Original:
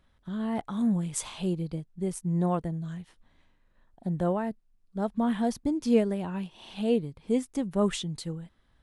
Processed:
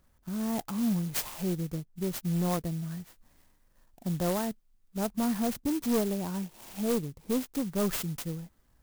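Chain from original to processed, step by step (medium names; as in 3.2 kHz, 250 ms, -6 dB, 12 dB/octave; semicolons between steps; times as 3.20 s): dynamic bell 7.1 kHz, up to +7 dB, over -56 dBFS, Q 1.6; saturation -22 dBFS, distortion -13 dB; 2.91–5.08 s: treble shelf 3.9 kHz +12 dB; sampling jitter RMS 0.096 ms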